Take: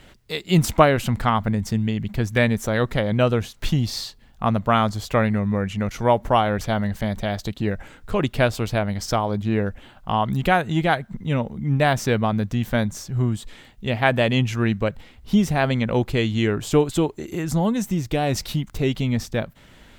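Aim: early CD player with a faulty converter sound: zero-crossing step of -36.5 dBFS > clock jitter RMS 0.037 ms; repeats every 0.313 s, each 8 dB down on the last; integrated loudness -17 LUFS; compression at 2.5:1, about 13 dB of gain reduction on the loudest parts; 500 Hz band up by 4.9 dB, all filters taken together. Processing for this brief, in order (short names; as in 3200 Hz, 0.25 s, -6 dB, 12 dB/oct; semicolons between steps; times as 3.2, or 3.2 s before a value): bell 500 Hz +6 dB; compressor 2.5:1, threshold -27 dBFS; feedback echo 0.313 s, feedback 40%, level -8 dB; zero-crossing step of -36.5 dBFS; clock jitter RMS 0.037 ms; gain +10 dB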